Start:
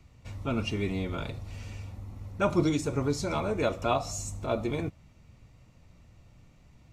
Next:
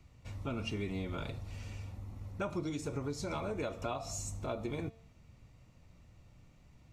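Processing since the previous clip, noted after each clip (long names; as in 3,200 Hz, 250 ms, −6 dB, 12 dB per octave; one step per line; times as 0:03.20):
hum removal 225.8 Hz, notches 30
downward compressor 6 to 1, threshold −30 dBFS, peak gain reduction 11 dB
level −3.5 dB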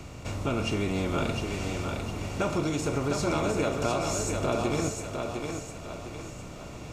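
compressor on every frequency bin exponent 0.6
feedback echo with a high-pass in the loop 705 ms, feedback 44%, high-pass 180 Hz, level −4.5 dB
level +6 dB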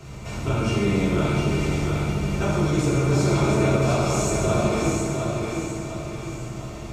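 convolution reverb RT60 2.0 s, pre-delay 4 ms, DRR −8.5 dB
level −4 dB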